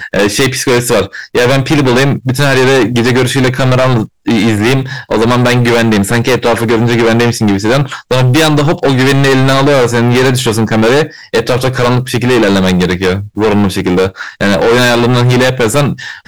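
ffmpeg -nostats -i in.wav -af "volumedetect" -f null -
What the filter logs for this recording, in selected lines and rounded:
mean_volume: -9.7 dB
max_volume: -5.4 dB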